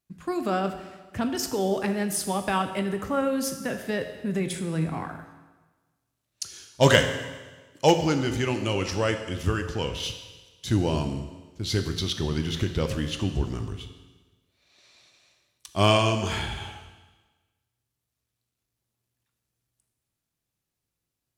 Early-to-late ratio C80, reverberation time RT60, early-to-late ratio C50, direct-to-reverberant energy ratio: 10.0 dB, 1.3 s, 8.5 dB, 6.5 dB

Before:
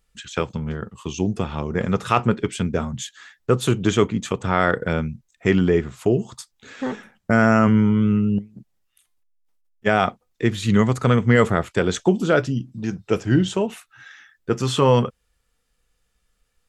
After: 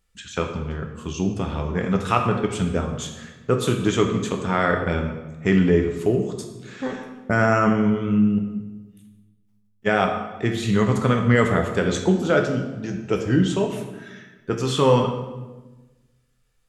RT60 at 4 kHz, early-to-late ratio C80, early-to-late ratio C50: 0.85 s, 8.0 dB, 6.0 dB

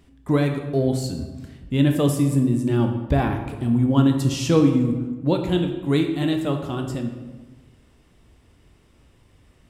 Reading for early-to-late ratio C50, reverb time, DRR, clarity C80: 6.5 dB, 1.3 s, 4.0 dB, 8.5 dB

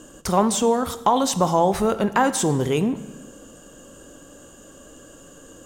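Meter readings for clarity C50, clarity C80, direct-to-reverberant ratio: 14.0 dB, 15.5 dB, 11.5 dB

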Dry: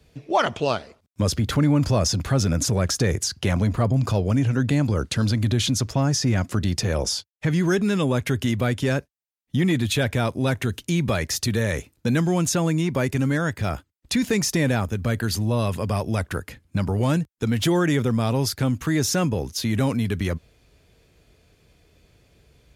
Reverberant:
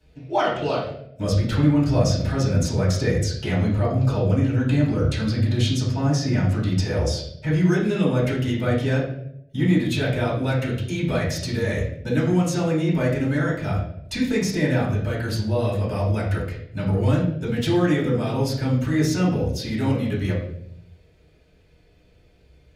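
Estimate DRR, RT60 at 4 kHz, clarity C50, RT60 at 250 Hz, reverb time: −8.0 dB, 0.55 s, 3.5 dB, 0.95 s, 0.75 s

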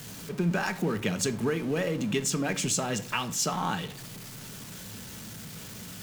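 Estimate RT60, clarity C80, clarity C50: 0.55 s, 20.5 dB, 16.0 dB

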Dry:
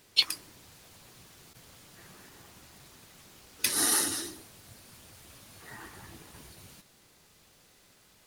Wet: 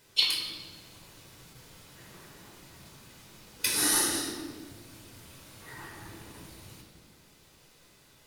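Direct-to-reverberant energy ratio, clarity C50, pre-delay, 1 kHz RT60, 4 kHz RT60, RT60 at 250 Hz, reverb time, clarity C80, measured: −2.0 dB, 3.5 dB, 8 ms, 1.3 s, 1.2 s, 2.2 s, 1.5 s, 5.0 dB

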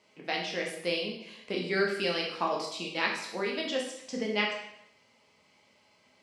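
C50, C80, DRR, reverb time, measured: 4.5 dB, 7.5 dB, −1.5 dB, 0.75 s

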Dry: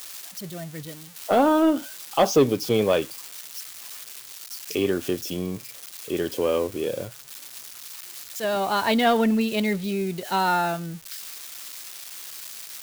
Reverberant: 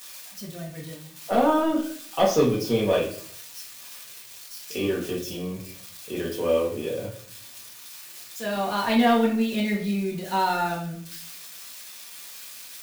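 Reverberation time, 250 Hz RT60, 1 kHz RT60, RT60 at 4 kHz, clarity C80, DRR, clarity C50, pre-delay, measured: 0.55 s, 0.70 s, 0.50 s, 0.40 s, 11.0 dB, −4.0 dB, 7.0 dB, 4 ms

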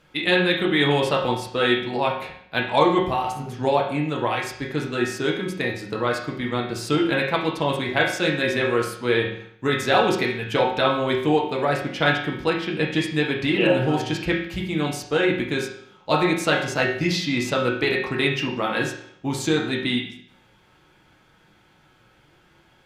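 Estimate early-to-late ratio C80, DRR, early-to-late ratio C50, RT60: 8.5 dB, −2.5 dB, 5.0 dB, 0.65 s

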